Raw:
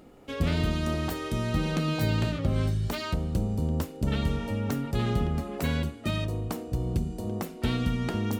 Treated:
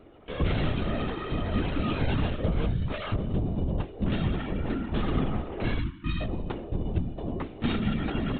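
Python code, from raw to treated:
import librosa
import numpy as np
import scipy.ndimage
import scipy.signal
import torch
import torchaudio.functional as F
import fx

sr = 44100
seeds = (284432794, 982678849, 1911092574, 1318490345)

y = fx.lpc_vocoder(x, sr, seeds[0], excitation='whisper', order=16)
y = fx.spec_erase(y, sr, start_s=5.79, length_s=0.41, low_hz=360.0, high_hz=890.0)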